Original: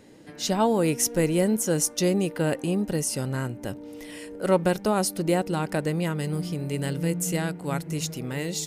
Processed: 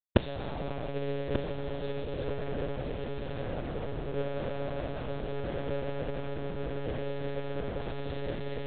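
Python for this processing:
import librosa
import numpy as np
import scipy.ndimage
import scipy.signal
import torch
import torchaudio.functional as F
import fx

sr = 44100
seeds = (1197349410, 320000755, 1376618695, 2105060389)

p1 = fx.spec_dilate(x, sr, span_ms=480)
p2 = fx.room_shoebox(p1, sr, seeds[0], volume_m3=76.0, walls='mixed', distance_m=1.4)
p3 = fx.schmitt(p2, sr, flips_db=-23.0)
p4 = fx.peak_eq(p3, sr, hz=480.0, db=14.0, octaves=0.24)
p5 = fx.lpc_monotone(p4, sr, seeds[1], pitch_hz=140.0, order=8)
p6 = fx.dynamic_eq(p5, sr, hz=2100.0, q=0.85, threshold_db=-23.0, ratio=4.0, max_db=-3)
p7 = fx.gate_flip(p6, sr, shuts_db=-8.0, range_db=-25)
p8 = p7 + fx.echo_single(p7, sr, ms=1188, db=-9.0, dry=0)
y = p8 * librosa.db_to_amplitude(-1.5)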